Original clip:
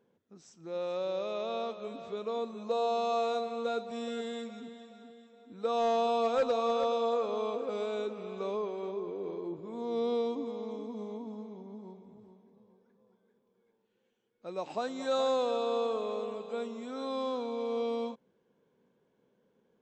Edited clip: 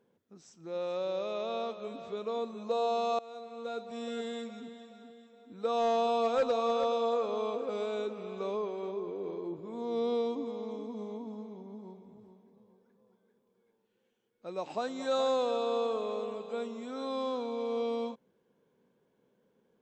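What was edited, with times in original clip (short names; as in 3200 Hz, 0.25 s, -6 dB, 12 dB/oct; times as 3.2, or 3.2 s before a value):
3.19–4.2 fade in linear, from -21.5 dB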